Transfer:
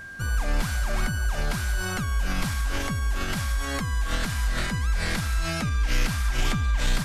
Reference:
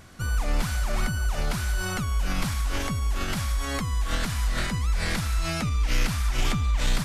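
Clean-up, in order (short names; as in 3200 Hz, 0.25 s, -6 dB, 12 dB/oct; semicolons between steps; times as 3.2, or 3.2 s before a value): notch 1600 Hz, Q 30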